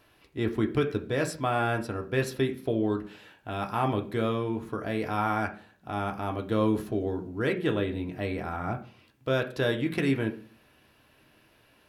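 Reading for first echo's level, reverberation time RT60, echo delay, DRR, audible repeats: none, 0.40 s, none, 2.5 dB, none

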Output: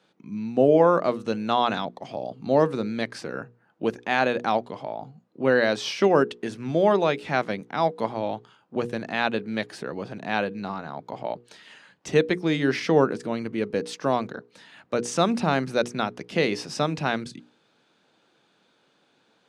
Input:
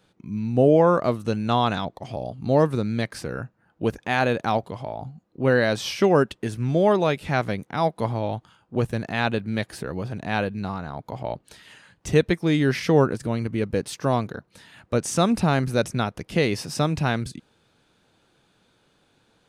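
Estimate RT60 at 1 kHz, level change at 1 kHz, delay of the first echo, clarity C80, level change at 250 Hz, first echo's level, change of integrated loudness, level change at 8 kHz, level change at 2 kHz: none, 0.0 dB, none, none, -2.5 dB, none, -1.5 dB, -3.5 dB, 0.0 dB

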